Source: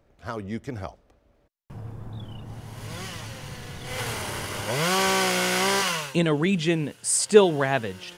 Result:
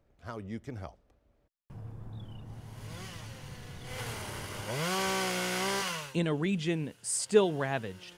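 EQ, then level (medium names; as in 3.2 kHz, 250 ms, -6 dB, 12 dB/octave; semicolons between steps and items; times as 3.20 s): bass shelf 200 Hz +4 dB; -9.0 dB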